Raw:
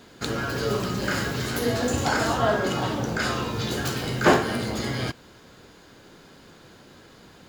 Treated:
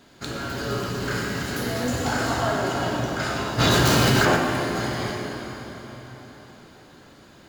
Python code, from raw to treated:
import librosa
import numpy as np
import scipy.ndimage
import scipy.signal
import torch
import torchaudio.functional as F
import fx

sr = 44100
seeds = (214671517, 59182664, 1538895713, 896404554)

y = fx.notch(x, sr, hz=470.0, q=12.0)
y = fx.rev_plate(y, sr, seeds[0], rt60_s=4.4, hf_ratio=0.8, predelay_ms=0, drr_db=-1.5)
y = fx.env_flatten(y, sr, amount_pct=100, at=(3.58, 4.35), fade=0.02)
y = F.gain(torch.from_numpy(y), -4.0).numpy()